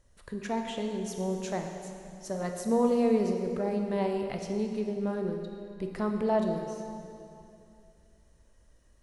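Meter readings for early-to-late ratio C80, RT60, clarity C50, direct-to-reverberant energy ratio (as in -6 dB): 5.5 dB, 2.6 s, 4.5 dB, 3.0 dB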